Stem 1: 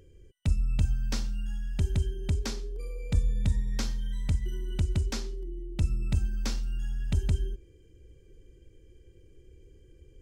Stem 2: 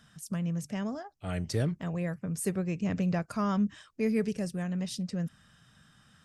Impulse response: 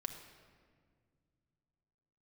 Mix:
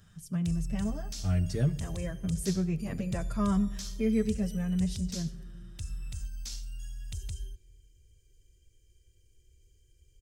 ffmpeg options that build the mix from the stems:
-filter_complex "[0:a]firequalizer=gain_entry='entry(110,0);entry(180,-12);entry(3300,7);entry(6100,13)':delay=0.05:min_phase=1,alimiter=limit=-20.5dB:level=0:latency=1:release=38,volume=-9.5dB,asplit=2[a][b];[b]volume=-12.5dB[c];[1:a]equalizer=f=100:t=o:w=1.4:g=13,asplit=2[d][e];[e]adelay=7.6,afreqshift=-0.86[f];[d][f]amix=inputs=2:normalize=1,volume=-4.5dB,asplit=2[g][h];[h]volume=-6dB[i];[2:a]atrim=start_sample=2205[j];[c][i]amix=inputs=2:normalize=0[k];[k][j]afir=irnorm=-1:irlink=0[l];[a][g][l]amix=inputs=3:normalize=0"

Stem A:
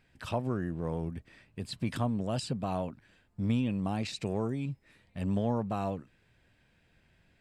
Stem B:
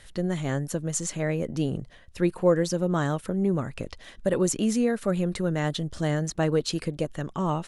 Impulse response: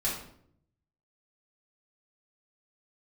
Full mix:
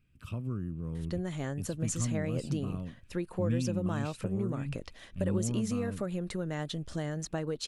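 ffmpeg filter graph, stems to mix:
-filter_complex "[0:a]firequalizer=gain_entry='entry(100,0);entry(810,-25);entry(1200,-7);entry(1800,-21);entry(2500,-6);entry(3900,-15);entry(11000,-5)':delay=0.05:min_phase=1,volume=1dB[a];[1:a]acompressor=threshold=-25dB:ratio=6,adelay=950,volume=-5dB[b];[a][b]amix=inputs=2:normalize=0"

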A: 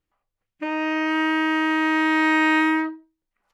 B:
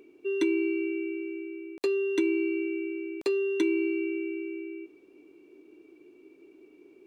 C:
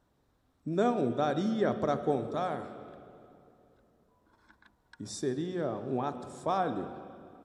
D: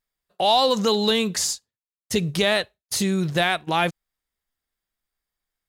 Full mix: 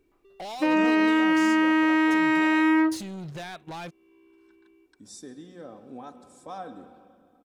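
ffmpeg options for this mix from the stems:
-filter_complex "[0:a]lowshelf=f=370:g=8.5,volume=1dB[a];[1:a]acompressor=threshold=-40dB:ratio=4,asoftclip=type=tanh:threshold=-38.5dB,volume=-14dB[b];[2:a]highshelf=f=5.9k:g=11,aecho=1:1:3.9:0.55,volume=-10.5dB[c];[3:a]highshelf=f=6.8k:g=-7.5,acompressor=threshold=-31dB:ratio=2,asoftclip=type=hard:threshold=-28.5dB,volume=-5.5dB,asplit=2[d][e];[e]apad=whole_len=311407[f];[b][f]sidechaincompress=threshold=-45dB:ratio=8:attack=16:release=417[g];[a][g][c][d]amix=inputs=4:normalize=0,alimiter=limit=-12dB:level=0:latency=1"

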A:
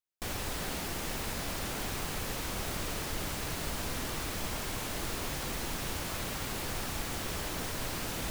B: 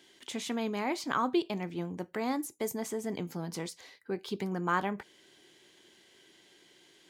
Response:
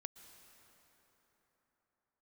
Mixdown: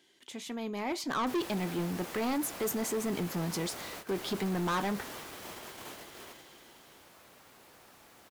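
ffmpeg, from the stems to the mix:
-filter_complex "[0:a]highpass=f=660:p=1,tiltshelf=f=1.4k:g=4.5,adelay=1050,volume=-3.5dB[a];[1:a]dynaudnorm=f=290:g=7:m=12.5dB,volume=-6dB,asplit=2[b][c];[c]apad=whole_len=412379[d];[a][d]sidechaingate=range=-14dB:threshold=-54dB:ratio=16:detection=peak[e];[e][b]amix=inputs=2:normalize=0,equalizer=f=12k:w=4.1:g=4,asoftclip=type=tanh:threshold=-27dB"

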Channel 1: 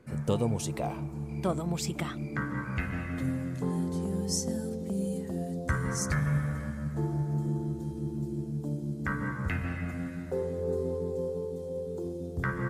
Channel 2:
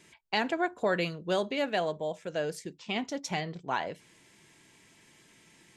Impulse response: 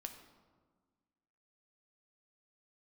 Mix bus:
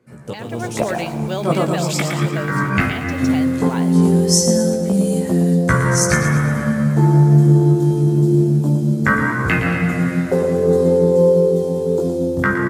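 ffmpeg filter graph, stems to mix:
-filter_complex "[0:a]dynaudnorm=f=230:g=7:m=7.5dB,flanger=delay=16.5:depth=3.7:speed=0.19,volume=1.5dB,asplit=2[a][b];[b]volume=-8.5dB[c];[1:a]acrusher=bits=7:mix=0:aa=0.000001,volume=-10dB,asplit=2[d][e];[e]apad=whole_len=559926[f];[a][f]sidechaincompress=threshold=-52dB:ratio=8:attack=22:release=123[g];[c]aecho=0:1:115|230|345|460|575|690|805:1|0.48|0.23|0.111|0.0531|0.0255|0.0122[h];[g][d][h]amix=inputs=3:normalize=0,highpass=120,dynaudnorm=f=380:g=3:m=14dB"

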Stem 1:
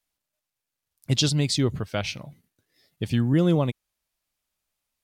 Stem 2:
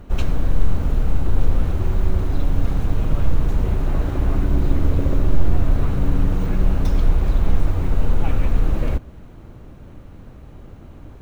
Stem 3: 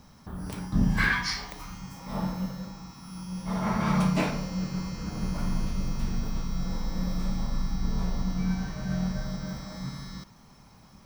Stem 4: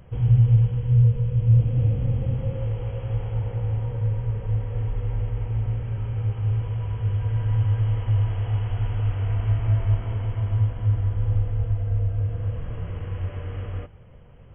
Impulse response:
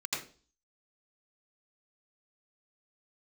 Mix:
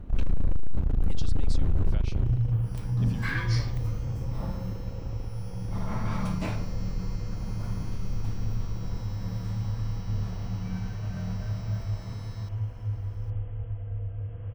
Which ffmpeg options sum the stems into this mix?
-filter_complex "[0:a]highpass=210,acompressor=threshold=-33dB:ratio=6,volume=-9dB[a];[1:a]highshelf=f=5.1k:g=-8.5,aeval=exprs='(tanh(12.6*val(0)+0.55)-tanh(0.55))/12.6':c=same,lowshelf=f=280:g=9.5,volume=-6.5dB,afade=t=out:st=2.16:d=0.41:silence=0.281838[b];[2:a]adelay=2250,volume=-7.5dB[c];[3:a]adelay=2000,volume=-10dB[d];[a][b][c][d]amix=inputs=4:normalize=0"

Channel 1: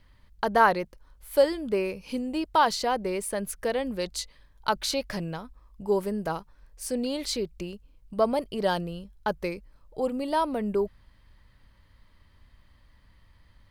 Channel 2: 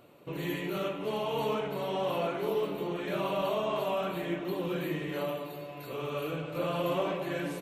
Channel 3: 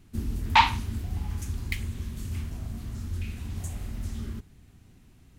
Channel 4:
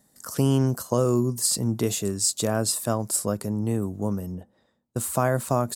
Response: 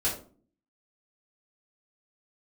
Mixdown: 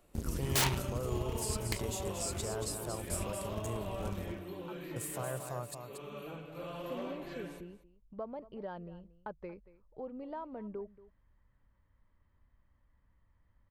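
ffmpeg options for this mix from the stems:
-filter_complex "[0:a]lowpass=1.6k,acompressor=threshold=-28dB:ratio=2.5,volume=-12dB,asplit=2[a][b];[b]volume=-18dB[c];[1:a]asoftclip=type=hard:threshold=-25dB,volume=-11dB,asplit=2[d][e];[e]volume=-17dB[f];[2:a]aeval=exprs='(mod(7.5*val(0)+1,2)-1)/7.5':c=same,aeval=exprs='0.133*(cos(1*acos(clip(val(0)/0.133,-1,1)))-cos(1*PI/2))+0.0188*(cos(7*acos(clip(val(0)/0.133,-1,1)))-cos(7*PI/2))':c=same,volume=-5.5dB[g];[3:a]equalizer=f=250:w=2.6:g=-12,alimiter=limit=-16.5dB:level=0:latency=1:release=181,volume=-11.5dB,asplit=3[h][i][j];[i]volume=-7dB[k];[j]apad=whole_len=604501[l];[a][l]sidechaincompress=threshold=-52dB:ratio=8:attack=16:release=1020[m];[c][f][k]amix=inputs=3:normalize=0,aecho=0:1:231:1[n];[m][d][g][h][n]amix=inputs=5:normalize=0"

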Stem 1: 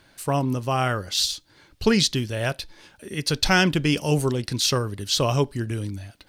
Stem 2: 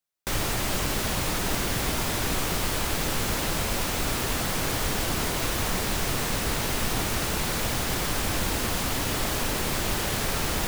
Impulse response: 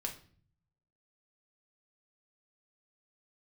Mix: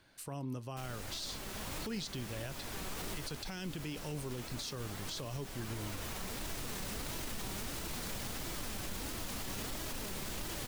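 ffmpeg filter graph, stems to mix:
-filter_complex "[0:a]acompressor=threshold=-36dB:ratio=1.5,volume=-9.5dB,asplit=2[a][b];[1:a]flanger=delay=3:depth=2.3:regen=67:speed=1.5:shape=sinusoidal,adelay=500,volume=-3.5dB[c];[b]apad=whole_len=492973[d];[c][d]sidechaincompress=threshold=-44dB:ratio=10:attack=21:release=1140[e];[a][e]amix=inputs=2:normalize=0,acrossover=split=400|3000[f][g][h];[g]acompressor=threshold=-41dB:ratio=6[i];[f][i][h]amix=inputs=3:normalize=0,alimiter=level_in=7dB:limit=-24dB:level=0:latency=1:release=46,volume=-7dB"

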